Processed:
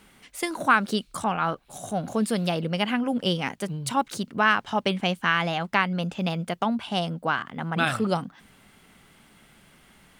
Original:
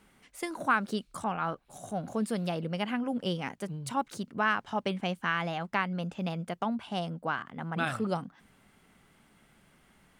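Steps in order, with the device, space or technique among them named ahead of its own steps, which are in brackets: presence and air boost (peaking EQ 3.5 kHz +4 dB 1.4 oct; treble shelf 9.2 kHz +5 dB); trim +6 dB

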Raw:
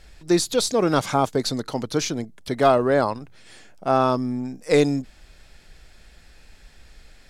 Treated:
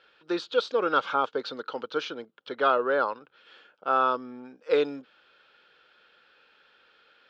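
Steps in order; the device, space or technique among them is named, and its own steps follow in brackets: phone earpiece (cabinet simulation 480–3600 Hz, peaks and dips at 490 Hz +6 dB, 690 Hz -9 dB, 1.4 kHz +10 dB, 2 kHz -9 dB, 3.1 kHz +5 dB); trim -4 dB

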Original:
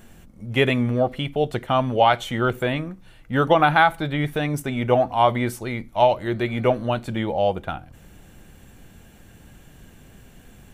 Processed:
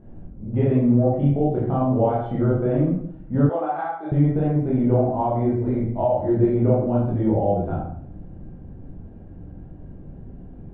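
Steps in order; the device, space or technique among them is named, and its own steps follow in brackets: television next door (compression 4:1, threshold -20 dBFS, peak gain reduction 8.5 dB; low-pass 510 Hz 12 dB/octave; reverberation RT60 0.65 s, pre-delay 18 ms, DRR -7 dB); 3.49–4.12 s: high-pass 620 Hz 12 dB/octave

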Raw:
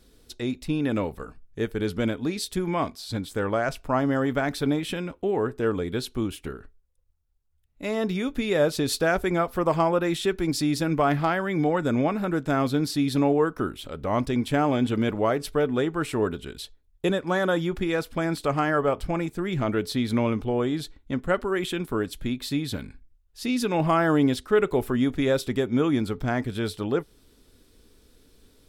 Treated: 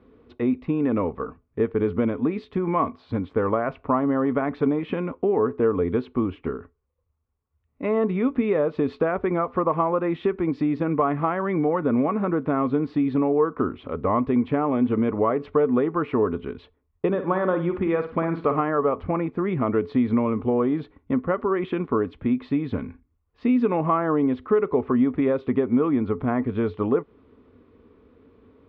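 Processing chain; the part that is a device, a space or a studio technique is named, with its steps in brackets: bass amplifier (compression 5:1, threshold -25 dBFS, peak gain reduction 9.5 dB; cabinet simulation 77–2200 Hz, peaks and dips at 88 Hz +5 dB, 130 Hz -3 dB, 250 Hz +6 dB, 450 Hz +6 dB, 1.1 kHz +9 dB, 1.6 kHz -6 dB); 17.07–18.61 s: flutter echo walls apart 9.2 m, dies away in 0.36 s; trim +3.5 dB

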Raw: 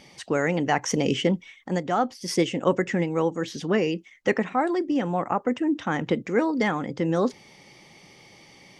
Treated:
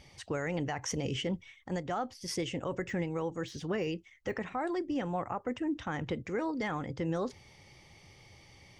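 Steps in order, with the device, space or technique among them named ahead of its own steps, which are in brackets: 2.74–4.34 s: de-esser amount 100%; car stereo with a boomy subwoofer (resonant low shelf 130 Hz +13.5 dB, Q 1.5; peak limiter -17.5 dBFS, peak gain reduction 9 dB); trim -7 dB

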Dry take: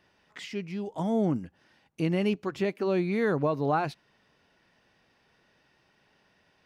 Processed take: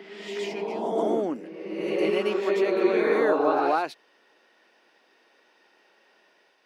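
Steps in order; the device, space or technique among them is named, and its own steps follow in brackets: ghost voice (reverse; reverberation RT60 1.7 s, pre-delay 99 ms, DRR -1 dB; reverse; high-pass 300 Hz 24 dB/octave); trim +2 dB

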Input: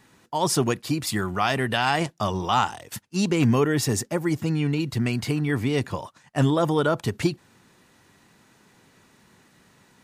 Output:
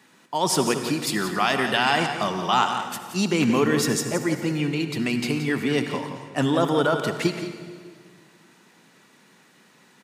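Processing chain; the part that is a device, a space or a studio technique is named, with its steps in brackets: PA in a hall (high-pass 160 Hz 24 dB/octave; peaking EQ 2.7 kHz +3 dB 1.9 oct; delay 173 ms -10 dB; reverberation RT60 1.8 s, pre-delay 58 ms, DRR 8 dB)

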